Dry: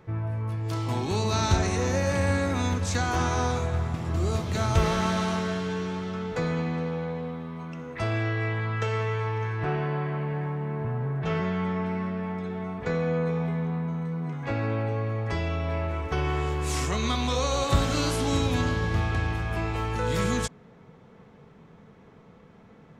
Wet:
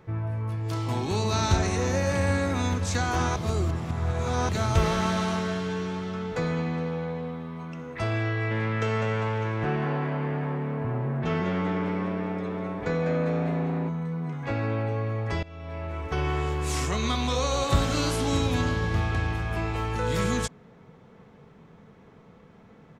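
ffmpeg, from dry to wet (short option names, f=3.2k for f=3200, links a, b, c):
-filter_complex "[0:a]asplit=3[a][b][c];[a]afade=t=out:st=8.5:d=0.02[d];[b]asplit=7[e][f][g][h][i][j][k];[f]adelay=200,afreqshift=110,volume=-8dB[l];[g]adelay=400,afreqshift=220,volume=-14dB[m];[h]adelay=600,afreqshift=330,volume=-20dB[n];[i]adelay=800,afreqshift=440,volume=-26.1dB[o];[j]adelay=1000,afreqshift=550,volume=-32.1dB[p];[k]adelay=1200,afreqshift=660,volume=-38.1dB[q];[e][l][m][n][o][p][q]amix=inputs=7:normalize=0,afade=t=in:st=8.5:d=0.02,afade=t=out:st=13.88:d=0.02[r];[c]afade=t=in:st=13.88:d=0.02[s];[d][r][s]amix=inputs=3:normalize=0,asplit=4[t][u][v][w];[t]atrim=end=3.362[x];[u]atrim=start=3.358:end=4.492,asetpts=PTS-STARTPTS,areverse[y];[v]atrim=start=4.488:end=15.43,asetpts=PTS-STARTPTS,afade=t=out:st=10.938:d=0.004:c=hsin:silence=0.0944061[z];[w]atrim=start=15.43,asetpts=PTS-STARTPTS,afade=t=in:d=0.79:silence=0.0944061[aa];[x][y]acrossfade=d=0.004:c1=hsin:c2=hsin[ab];[z][aa]concat=n=2:v=0:a=1[ac];[ab][ac]acrossfade=d=0.004:c1=hsin:c2=hsin"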